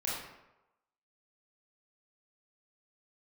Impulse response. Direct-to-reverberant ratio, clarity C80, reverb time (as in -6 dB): -7.0 dB, 3.5 dB, 0.95 s